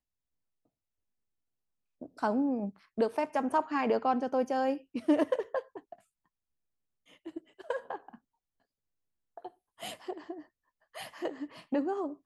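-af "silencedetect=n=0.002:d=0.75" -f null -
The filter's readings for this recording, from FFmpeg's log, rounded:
silence_start: 0.00
silence_end: 2.01 | silence_duration: 2.01
silence_start: 5.99
silence_end: 7.08 | silence_duration: 1.09
silence_start: 8.16
silence_end: 9.37 | silence_duration: 1.21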